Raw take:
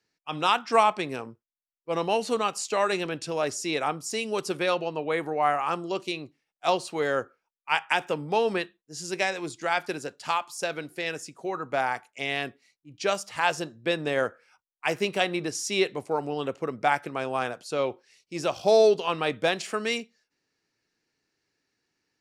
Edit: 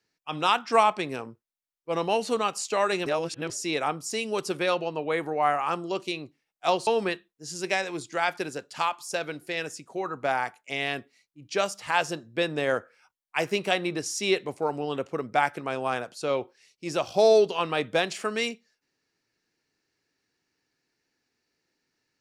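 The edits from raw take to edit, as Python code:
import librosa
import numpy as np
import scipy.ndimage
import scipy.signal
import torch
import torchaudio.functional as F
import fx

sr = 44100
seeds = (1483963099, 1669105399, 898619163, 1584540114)

y = fx.edit(x, sr, fx.reverse_span(start_s=3.06, length_s=0.44),
    fx.cut(start_s=6.87, length_s=1.49), tone=tone)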